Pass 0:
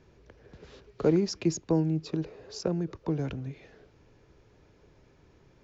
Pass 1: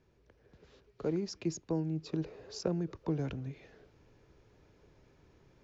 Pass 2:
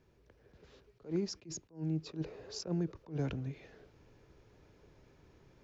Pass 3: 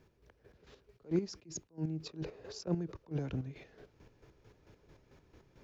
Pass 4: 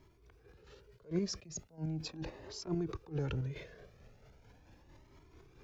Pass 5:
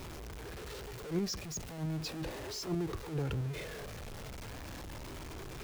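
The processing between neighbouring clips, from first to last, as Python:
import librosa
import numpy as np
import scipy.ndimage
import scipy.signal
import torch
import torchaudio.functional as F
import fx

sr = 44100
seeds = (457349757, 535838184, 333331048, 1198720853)

y1 = fx.rider(x, sr, range_db=4, speed_s=0.5)
y1 = y1 * 10.0 ** (-6.0 / 20.0)
y2 = fx.attack_slew(y1, sr, db_per_s=220.0)
y2 = y2 * 10.0 ** (1.0 / 20.0)
y3 = fx.chopper(y2, sr, hz=4.5, depth_pct=60, duty_pct=35)
y3 = y3 * 10.0 ** (3.5 / 20.0)
y4 = fx.transient(y3, sr, attack_db=-5, sustain_db=5)
y4 = fx.comb_cascade(y4, sr, direction='rising', hz=0.39)
y4 = y4 * 10.0 ** (6.0 / 20.0)
y5 = y4 + 0.5 * 10.0 ** (-38.5 / 20.0) * np.sign(y4)
y5 = y5 * 10.0 ** (-1.0 / 20.0)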